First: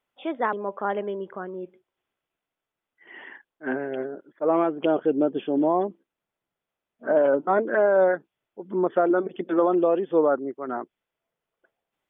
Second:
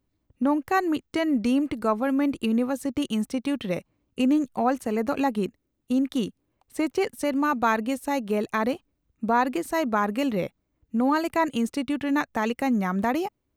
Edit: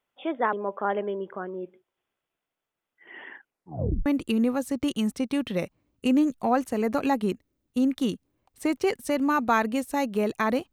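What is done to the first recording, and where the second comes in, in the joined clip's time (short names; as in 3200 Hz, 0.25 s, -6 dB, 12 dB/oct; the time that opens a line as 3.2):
first
3.38 tape stop 0.68 s
4.06 switch to second from 2.2 s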